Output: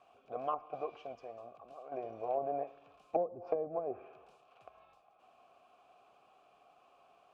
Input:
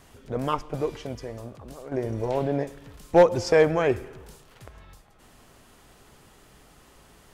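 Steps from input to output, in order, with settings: vowel filter a; low-pass that closes with the level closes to 330 Hz, closed at -28 dBFS; trim +2 dB

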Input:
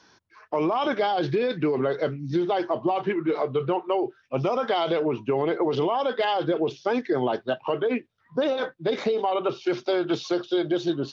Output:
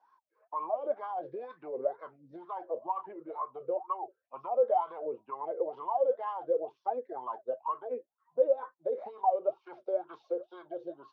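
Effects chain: wah-wah 2.1 Hz 490–1100 Hz, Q 18; dynamic bell 4.4 kHz, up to -6 dB, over -60 dBFS, Q 0.79; trim +5.5 dB

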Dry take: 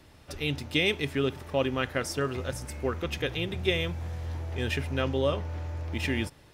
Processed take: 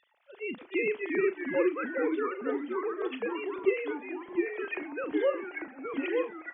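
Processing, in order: formants replaced by sine waves; on a send: delay 749 ms -23 dB; on the sum: ever faster or slower copies 261 ms, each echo -2 st, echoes 3; doubling 38 ms -12 dB; trim -4.5 dB

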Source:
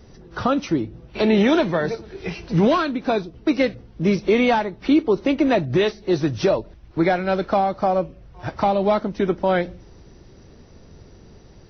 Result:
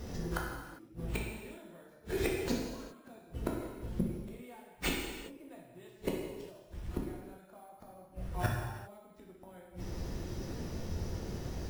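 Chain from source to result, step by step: inverted gate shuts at -22 dBFS, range -40 dB; careless resampling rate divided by 4×, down none, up hold; gated-style reverb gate 430 ms falling, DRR -2 dB; trim +2 dB

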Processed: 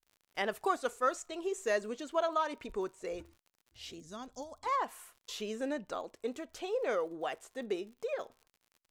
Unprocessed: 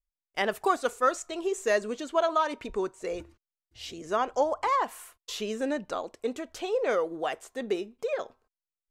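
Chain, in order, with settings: crackle 70 per s -44 dBFS; time-frequency box 4.00–4.66 s, 290–3300 Hz -14 dB; trim -6 dB

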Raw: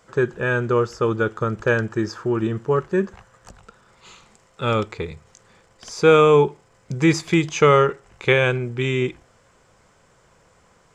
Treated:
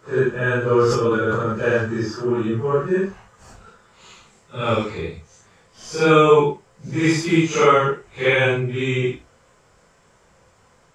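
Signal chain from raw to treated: phase randomisation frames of 200 ms; 0.61–1.53 s: decay stretcher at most 32 dB/s; trim +1 dB

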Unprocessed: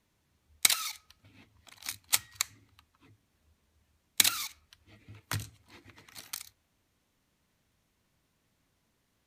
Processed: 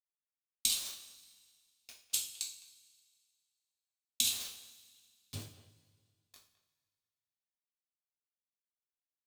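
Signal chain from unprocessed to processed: level-controlled noise filter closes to 1.1 kHz, open at -30.5 dBFS; Chebyshev band-stop 250–2800 Hz, order 4; small samples zeroed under -35.5 dBFS; speakerphone echo 210 ms, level -16 dB; two-slope reverb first 0.43 s, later 2 s, from -18 dB, DRR -3 dB; trim -8.5 dB

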